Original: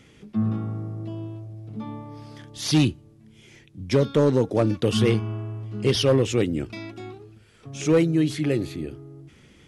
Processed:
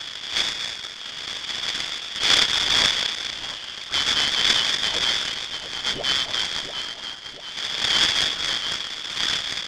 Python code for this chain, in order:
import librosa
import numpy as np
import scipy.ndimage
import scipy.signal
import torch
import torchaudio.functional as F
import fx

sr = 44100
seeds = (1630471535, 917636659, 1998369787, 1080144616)

y = fx.dmg_wind(x, sr, seeds[0], corner_hz=260.0, level_db=-22.0)
y = scipy.signal.sosfilt(scipy.signal.butter(2, 83.0, 'highpass', fs=sr, output='sos'), y)
y = fx.echo_split(y, sr, split_hz=330.0, low_ms=239, high_ms=690, feedback_pct=52, wet_db=-7.5)
y = fx.freq_invert(y, sr, carrier_hz=3600)
y = fx.noise_mod_delay(y, sr, seeds[1], noise_hz=1400.0, depth_ms=0.033)
y = y * 10.0 ** (-4.5 / 20.0)